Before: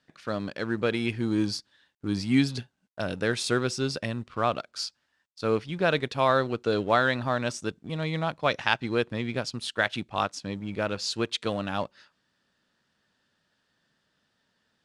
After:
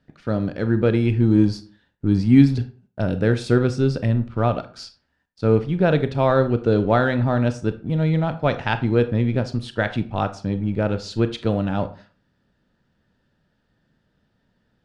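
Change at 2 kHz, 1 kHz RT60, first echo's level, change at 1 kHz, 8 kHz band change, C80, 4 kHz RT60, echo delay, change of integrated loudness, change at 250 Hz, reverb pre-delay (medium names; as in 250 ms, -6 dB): 0.0 dB, 0.40 s, no echo, +2.0 dB, no reading, 18.5 dB, 0.25 s, no echo, +7.5 dB, +10.0 dB, 25 ms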